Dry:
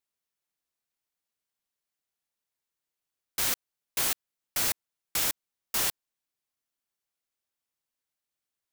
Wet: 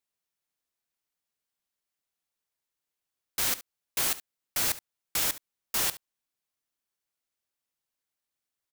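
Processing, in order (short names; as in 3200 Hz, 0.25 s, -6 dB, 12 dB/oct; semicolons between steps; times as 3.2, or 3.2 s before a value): echo 70 ms -16.5 dB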